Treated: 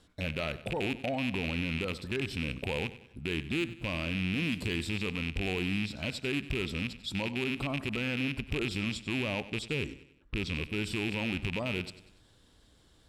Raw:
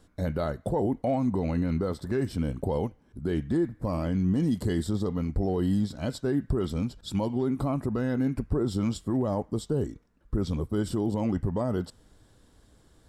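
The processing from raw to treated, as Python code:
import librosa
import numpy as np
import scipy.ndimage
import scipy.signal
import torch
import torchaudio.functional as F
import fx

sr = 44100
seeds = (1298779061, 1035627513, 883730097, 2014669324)

p1 = fx.rattle_buzz(x, sr, strikes_db=-27.0, level_db=-22.0)
p2 = fx.peak_eq(p1, sr, hz=3300.0, db=9.5, octaves=1.4)
p3 = fx.cheby_harmonics(p2, sr, harmonics=(3, 5), levels_db=(-20, -24), full_scale_db=-12.5)
p4 = fx.level_steps(p3, sr, step_db=22)
p5 = p3 + F.gain(torch.from_numpy(p4), -0.5).numpy()
p6 = fx.env_lowpass(p5, sr, base_hz=2300.0, full_db=-22.0, at=(8.81, 10.55))
p7 = fx.echo_feedback(p6, sr, ms=95, feedback_pct=45, wet_db=-15.5)
y = F.gain(torch.from_numpy(p7), -7.5).numpy()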